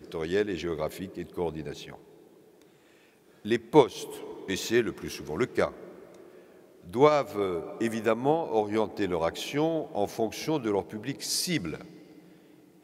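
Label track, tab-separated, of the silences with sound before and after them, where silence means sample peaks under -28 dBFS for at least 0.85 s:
1.710000	3.460000	silence
5.680000	6.950000	silence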